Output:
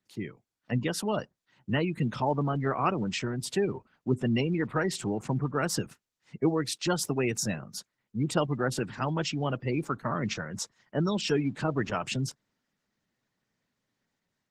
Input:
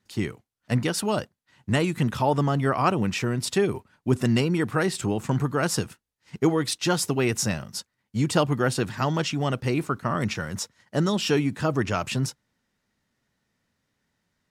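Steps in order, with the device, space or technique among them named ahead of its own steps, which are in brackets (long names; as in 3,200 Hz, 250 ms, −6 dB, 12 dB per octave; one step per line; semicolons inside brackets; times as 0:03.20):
noise-suppressed video call (high-pass filter 110 Hz 24 dB per octave; gate on every frequency bin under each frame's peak −25 dB strong; automatic gain control gain up to 4.5 dB; level −8.5 dB; Opus 16 kbit/s 48,000 Hz)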